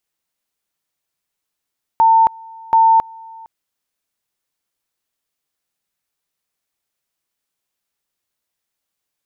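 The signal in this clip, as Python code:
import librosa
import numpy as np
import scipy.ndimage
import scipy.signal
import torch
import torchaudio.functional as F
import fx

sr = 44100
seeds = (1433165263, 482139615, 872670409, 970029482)

y = fx.two_level_tone(sr, hz=900.0, level_db=-7.5, drop_db=26.0, high_s=0.27, low_s=0.46, rounds=2)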